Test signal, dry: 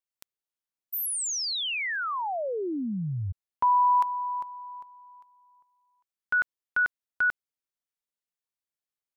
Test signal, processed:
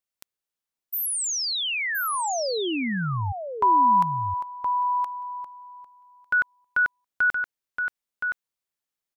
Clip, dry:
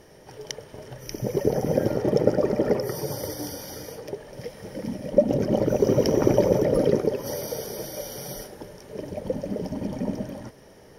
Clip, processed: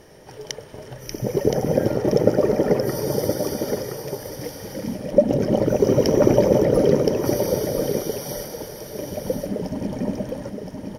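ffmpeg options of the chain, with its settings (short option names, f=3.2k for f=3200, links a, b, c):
-af "aecho=1:1:1020:0.501,volume=3dB"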